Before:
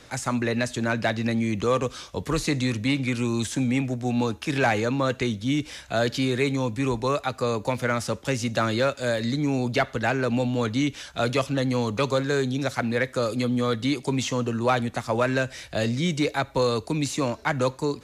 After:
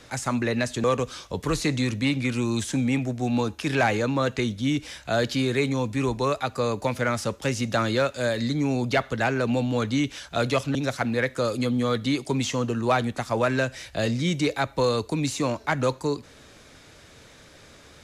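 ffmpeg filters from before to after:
-filter_complex "[0:a]asplit=3[s0][s1][s2];[s0]atrim=end=0.842[s3];[s1]atrim=start=1.668:end=11.582[s4];[s2]atrim=start=12.528[s5];[s3][s4]acrossfade=d=0.004:c1=hsin:c2=hsin[s6];[s6][s5]acrossfade=d=0.004:c1=hsin:c2=hsin"

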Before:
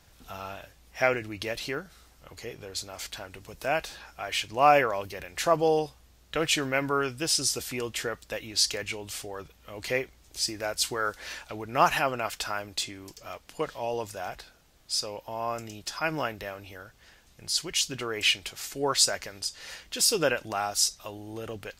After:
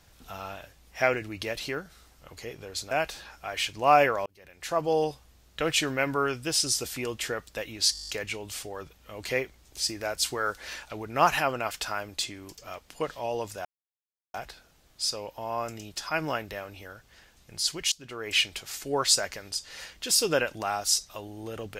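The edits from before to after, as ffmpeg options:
-filter_complex "[0:a]asplit=13[s0][s1][s2][s3][s4][s5][s6][s7][s8][s9][s10][s11][s12];[s0]atrim=end=2.912[s13];[s1]atrim=start=3.658:end=5.01,asetpts=PTS-STARTPTS,afade=t=out:st=1.348:d=0.004:c=hsin[s14];[s2]atrim=start=5.01:end=8.702,asetpts=PTS-STARTPTS,afade=t=in:d=0.82[s15];[s3]atrim=start=8.678:end=8.702[s16];[s4]atrim=start=8.678:end=8.702[s17];[s5]atrim=start=8.678:end=8.702[s18];[s6]atrim=start=8.678:end=8.702[s19];[s7]atrim=start=8.678:end=8.702[s20];[s8]atrim=start=8.678:end=8.702[s21];[s9]atrim=start=8.678:end=8.702[s22];[s10]atrim=start=8.678:end=14.24,asetpts=PTS-STARTPTS,afade=t=out:st=5.558:d=0.004:c=hsin,apad=pad_dur=0.69[s23];[s11]atrim=start=14.24:end=17.82,asetpts=PTS-STARTPTS,afade=t=in:d=0.004:c=hsin,afade=t=out:st=3.576:d=0.004:c=hsin:silence=0.1[s24];[s12]atrim=start=17.82,asetpts=PTS-STARTPTS,afade=t=in:d=0.49:silence=0.1[s25];[s14][s15]concat=n=2:v=0:a=1[s26];[s13][s26]acrossfade=d=0.004:c1=hsin:c2=hsin[s27];[s27][s16]acrossfade=d=0.004:c1=hsin:c2=hsin[s28];[s28][s17]acrossfade=d=0.004:c1=hsin:c2=hsin[s29];[s29][s18]acrossfade=d=0.004:c1=hsin:c2=hsin[s30];[s30][s19]acrossfade=d=0.004:c1=hsin:c2=hsin[s31];[s31][s20]acrossfade=d=0.004:c1=hsin:c2=hsin[s32];[s32][s21]acrossfade=d=0.004:c1=hsin:c2=hsin[s33];[s33][s22]acrossfade=d=0.004:c1=hsin:c2=hsin[s34];[s23][s24][s25]concat=n=3:v=0:a=1[s35];[s34][s35]acrossfade=d=0.004:c1=hsin:c2=hsin"

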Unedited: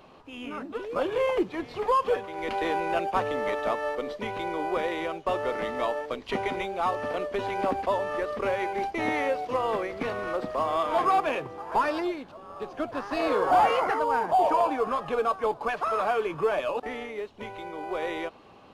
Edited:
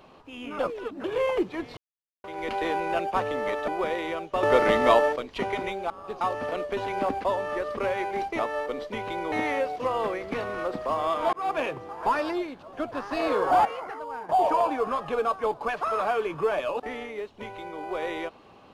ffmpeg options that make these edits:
-filter_complex "[0:a]asplit=16[s0][s1][s2][s3][s4][s5][s6][s7][s8][s9][s10][s11][s12][s13][s14][s15];[s0]atrim=end=0.592[s16];[s1]atrim=start=0.588:end=1.042,asetpts=PTS-STARTPTS,areverse[s17];[s2]atrim=start=1.038:end=1.77,asetpts=PTS-STARTPTS,afade=t=out:st=0.728:d=0.004:c=hsin[s18];[s3]atrim=start=1.77:end=2.24,asetpts=PTS-STARTPTS,volume=0[s19];[s4]atrim=start=2.24:end=3.682,asetpts=PTS-STARTPTS,afade=t=in:d=0.004:c=hsin[s20];[s5]atrim=start=4.608:end=5.362[s21];[s6]atrim=start=5.358:end=6.092,asetpts=PTS-STARTPTS,volume=2.99[s22];[s7]atrim=start=6.088:end=6.832[s23];[s8]atrim=start=12.418:end=12.732[s24];[s9]atrim=start=6.828:end=9.012[s25];[s10]atrim=start=3.678:end=4.612[s26];[s11]atrim=start=9.008:end=11.02,asetpts=PTS-STARTPTS,afade=t=out:st=2.008:d=0.004:c=hsin[s27];[s12]atrim=start=11.02:end=12.422,asetpts=PTS-STARTPTS,afade=t=in:d=0.25[s28];[s13]atrim=start=12.728:end=13.652[s29];[s14]atrim=start=13.648:end=14.292,asetpts=PTS-STARTPTS,volume=0.299[s30];[s15]atrim=start=14.288[s31];[s16][s17]acrossfade=d=0.004:c1=hsin:c2=hsin[s32];[s18][s19][s20]concat=n=3:v=0:a=1[s33];[s32][s33]acrossfade=d=0.004:c1=hsin:c2=hsin[s34];[s34][s21]acrossfade=d=0.004:c1=hsin:c2=hsin[s35];[s35][s22]acrossfade=d=0.004:c1=hsin:c2=hsin[s36];[s36][s23]acrossfade=d=0.004:c1=hsin:c2=hsin[s37];[s37][s24]acrossfade=d=0.004:c1=hsin:c2=hsin[s38];[s38][s25]acrossfade=d=0.004:c1=hsin:c2=hsin[s39];[s39][s26]acrossfade=d=0.004:c1=hsin:c2=hsin[s40];[s27][s28]concat=n=2:v=0:a=1[s41];[s40][s41]acrossfade=d=0.004:c1=hsin:c2=hsin[s42];[s42][s29]acrossfade=d=0.004:c1=hsin:c2=hsin[s43];[s43][s30]acrossfade=d=0.004:c1=hsin:c2=hsin[s44];[s44][s31]acrossfade=d=0.004:c1=hsin:c2=hsin"

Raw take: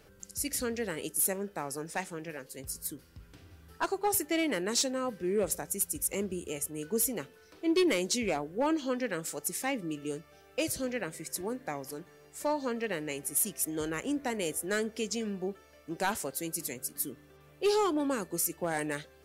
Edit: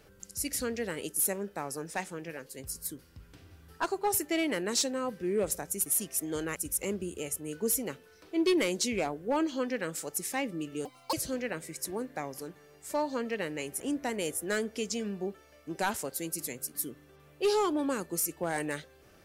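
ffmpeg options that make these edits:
-filter_complex "[0:a]asplit=6[s0][s1][s2][s3][s4][s5];[s0]atrim=end=5.862[s6];[s1]atrim=start=13.308:end=14.012[s7];[s2]atrim=start=5.858:end=10.154[s8];[s3]atrim=start=10.15:end=10.64,asetpts=PTS-STARTPTS,asetrate=76734,aresample=44100[s9];[s4]atrim=start=10.636:end=13.312[s10];[s5]atrim=start=14.008[s11];[s6][s7]acrossfade=d=0.004:c1=hsin:c2=hsin[s12];[s12][s8]acrossfade=d=0.004:c1=hsin:c2=hsin[s13];[s13][s9]acrossfade=d=0.004:c1=hsin:c2=hsin[s14];[s14][s10]acrossfade=d=0.004:c1=hsin:c2=hsin[s15];[s15][s11]acrossfade=d=0.004:c1=hsin:c2=hsin"

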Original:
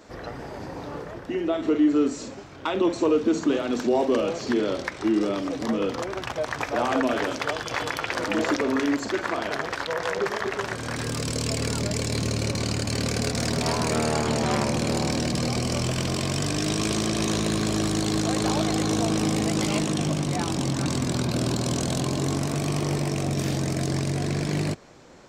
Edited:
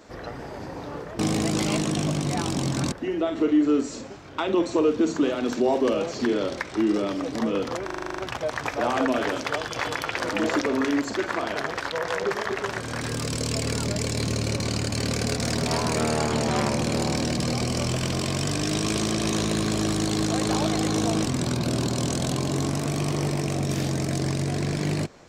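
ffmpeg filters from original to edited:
-filter_complex "[0:a]asplit=12[s0][s1][s2][s3][s4][s5][s6][s7][s8][s9][s10][s11];[s0]atrim=end=1.192[s12];[s1]atrim=start=19.208:end=20.942[s13];[s2]atrim=start=1.188:end=6.162[s14];[s3]atrim=start=6.118:end=6.162[s15];[s4]atrim=start=6.118:end=6.162[s16];[s5]atrim=start=6.118:end=6.162[s17];[s6]atrim=start=6.118:end=6.162[s18];[s7]atrim=start=6.118:end=6.162[s19];[s8]atrim=start=6.118:end=6.162[s20];[s9]atrim=start=6.118:end=6.162[s21];[s10]atrim=start=6.118:end=19.212[s22];[s11]atrim=start=20.938[s23];[s12][s13]acrossfade=d=0.004:c1=hsin:c2=hsin[s24];[s24][s14]acrossfade=d=0.004:c1=hsin:c2=hsin[s25];[s25][s15]acrossfade=d=0.004:c1=hsin:c2=hsin[s26];[s26][s16]acrossfade=d=0.004:c1=hsin:c2=hsin[s27];[s27][s17]acrossfade=d=0.004:c1=hsin:c2=hsin[s28];[s28][s18]acrossfade=d=0.004:c1=hsin:c2=hsin[s29];[s29][s19]acrossfade=d=0.004:c1=hsin:c2=hsin[s30];[s30][s20]acrossfade=d=0.004:c1=hsin:c2=hsin[s31];[s31][s21]acrossfade=d=0.004:c1=hsin:c2=hsin[s32];[s32][s22]acrossfade=d=0.004:c1=hsin:c2=hsin[s33];[s33][s23]acrossfade=d=0.004:c1=hsin:c2=hsin"

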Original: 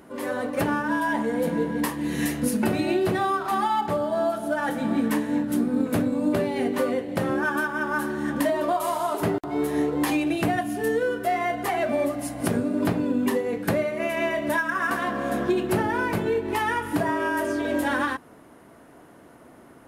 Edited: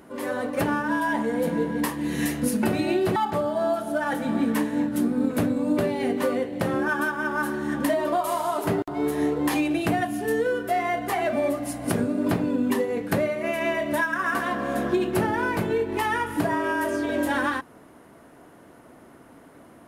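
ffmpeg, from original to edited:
-filter_complex "[0:a]asplit=2[s0][s1];[s0]atrim=end=3.162[s2];[s1]atrim=start=3.718[s3];[s2][s3]acrossfade=d=0.004:c1=hsin:c2=hsin"

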